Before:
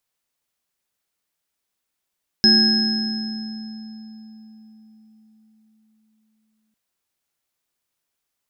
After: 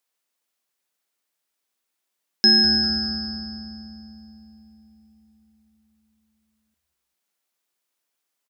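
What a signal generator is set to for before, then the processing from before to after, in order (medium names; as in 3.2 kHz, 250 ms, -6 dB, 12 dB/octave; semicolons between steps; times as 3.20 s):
sine partials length 4.30 s, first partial 218 Hz, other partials 363/776/1640/5150 Hz, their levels -9/-18.5/-9/6 dB, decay 4.89 s, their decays 1.93/3.57/2.28/2.36 s, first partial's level -16 dB
high-pass 240 Hz 12 dB/octave; frequency-shifting echo 198 ms, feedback 37%, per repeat -140 Hz, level -14 dB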